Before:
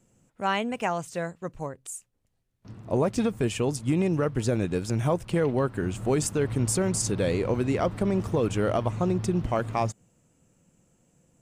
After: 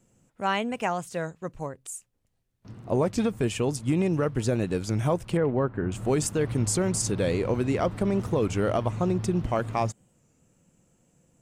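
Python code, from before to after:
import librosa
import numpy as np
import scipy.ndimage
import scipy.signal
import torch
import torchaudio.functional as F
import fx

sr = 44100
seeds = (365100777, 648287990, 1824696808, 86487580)

y = fx.lowpass(x, sr, hz=1800.0, slope=12, at=(5.37, 5.92))
y = fx.record_warp(y, sr, rpm=33.33, depth_cents=100.0)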